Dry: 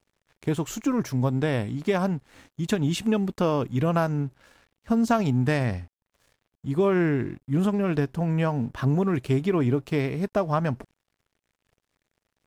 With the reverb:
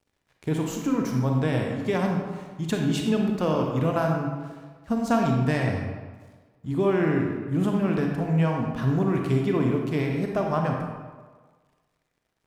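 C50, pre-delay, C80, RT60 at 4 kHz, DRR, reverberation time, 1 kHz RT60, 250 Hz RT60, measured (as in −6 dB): 2.0 dB, 30 ms, 4.0 dB, 0.90 s, 1.0 dB, 1.5 s, 1.5 s, 1.3 s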